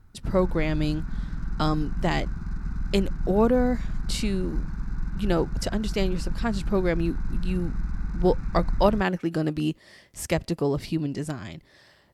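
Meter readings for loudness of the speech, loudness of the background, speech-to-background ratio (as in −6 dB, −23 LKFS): −27.0 LKFS, −34.0 LKFS, 7.0 dB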